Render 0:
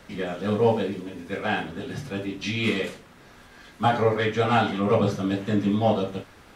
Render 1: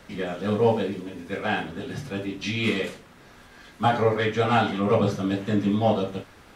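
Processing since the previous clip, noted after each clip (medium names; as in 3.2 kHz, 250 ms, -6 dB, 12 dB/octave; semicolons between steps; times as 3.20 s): no audible change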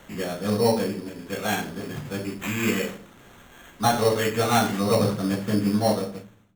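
fade out at the end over 0.76 s; sample-rate reducer 4.9 kHz, jitter 0%; reverberation RT60 0.60 s, pre-delay 6 ms, DRR 12.5 dB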